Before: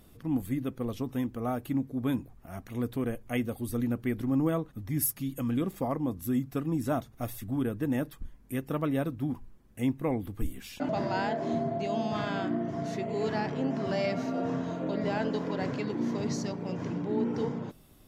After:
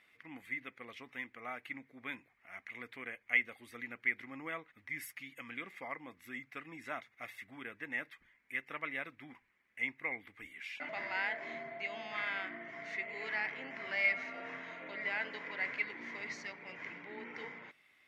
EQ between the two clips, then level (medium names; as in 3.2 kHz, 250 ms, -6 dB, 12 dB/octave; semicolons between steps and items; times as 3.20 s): band-pass filter 2.1 kHz, Q 7.8; +13.5 dB